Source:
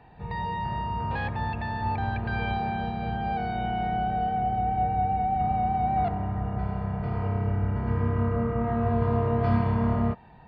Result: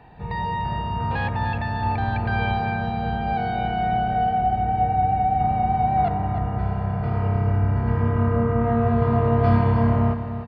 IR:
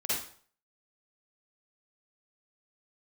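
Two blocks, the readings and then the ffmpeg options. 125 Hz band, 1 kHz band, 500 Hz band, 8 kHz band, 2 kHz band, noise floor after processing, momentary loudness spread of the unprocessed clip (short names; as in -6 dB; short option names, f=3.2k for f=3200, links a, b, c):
+6.0 dB, +5.0 dB, +5.5 dB, n/a, +5.5 dB, -28 dBFS, 6 LU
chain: -af "aecho=1:1:300|600|900:0.335|0.0904|0.0244,volume=4.5dB"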